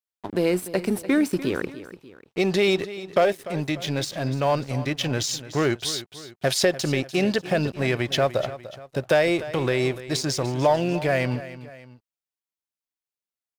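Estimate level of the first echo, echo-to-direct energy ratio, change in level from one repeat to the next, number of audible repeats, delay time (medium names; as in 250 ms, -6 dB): -15.0 dB, -14.0 dB, -6.5 dB, 2, 295 ms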